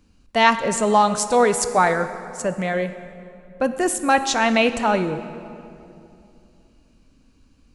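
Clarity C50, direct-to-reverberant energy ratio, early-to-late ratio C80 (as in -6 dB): 11.0 dB, 10.0 dB, 12.0 dB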